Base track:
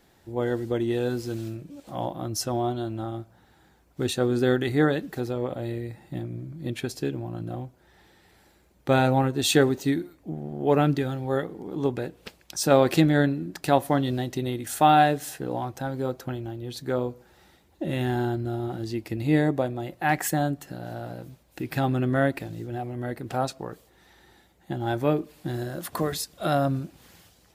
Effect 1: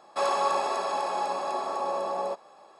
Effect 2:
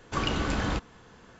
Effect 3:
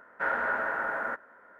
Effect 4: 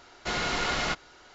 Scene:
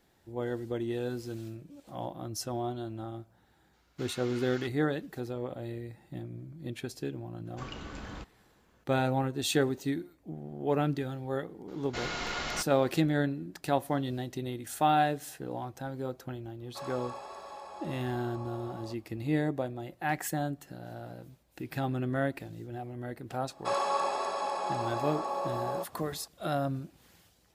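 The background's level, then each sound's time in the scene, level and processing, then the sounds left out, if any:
base track -7.5 dB
3.73 add 4 -17.5 dB + HPF 1000 Hz
7.45 add 2 -14 dB
11.68 add 4 -6.5 dB
16.59 add 1 -16 dB + stuck buffer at 1.32
23.49 add 1 -4 dB
not used: 3

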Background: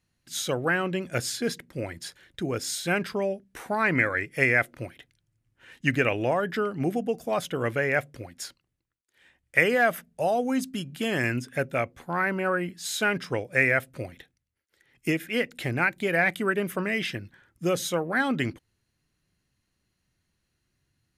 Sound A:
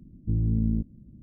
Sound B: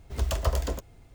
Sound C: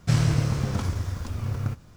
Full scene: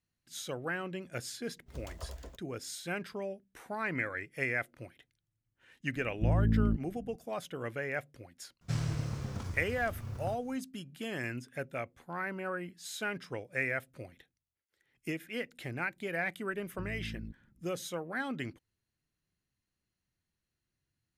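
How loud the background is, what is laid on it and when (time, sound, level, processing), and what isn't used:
background -11 dB
1.56 add B -17.5 dB + gate -42 dBFS, range -10 dB
5.94 add A -2.5 dB
8.61 add C -12 dB
16.5 add A -17.5 dB

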